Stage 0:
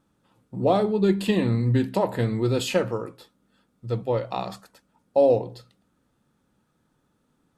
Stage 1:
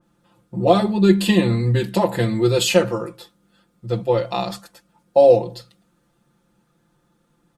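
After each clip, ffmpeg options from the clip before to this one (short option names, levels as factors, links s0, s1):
-af "aecho=1:1:5.8:0.96,adynamicequalizer=threshold=0.0141:dfrequency=2500:dqfactor=0.7:tfrequency=2500:tqfactor=0.7:attack=5:release=100:ratio=0.375:range=2.5:mode=boostabove:tftype=highshelf,volume=1.33"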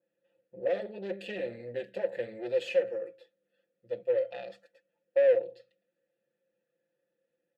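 -filter_complex "[0:a]aeval=exprs='(tanh(7.08*val(0)+0.75)-tanh(0.75))/7.08':c=same,asplit=3[s0][s1][s2];[s0]bandpass=f=530:t=q:w=8,volume=1[s3];[s1]bandpass=f=1840:t=q:w=8,volume=0.501[s4];[s2]bandpass=f=2480:t=q:w=8,volume=0.355[s5];[s3][s4][s5]amix=inputs=3:normalize=0"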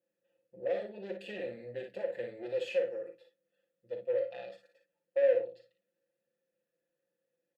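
-af "aecho=1:1:39|57:0.335|0.422,volume=0.562"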